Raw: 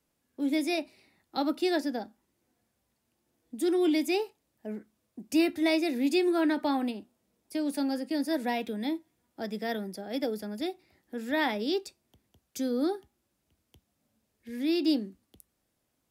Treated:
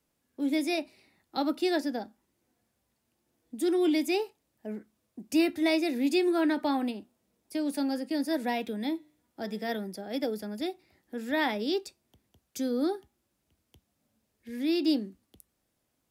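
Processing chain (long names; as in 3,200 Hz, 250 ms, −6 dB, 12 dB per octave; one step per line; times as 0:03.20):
0:08.90–0:09.76: hum removal 150.5 Hz, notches 29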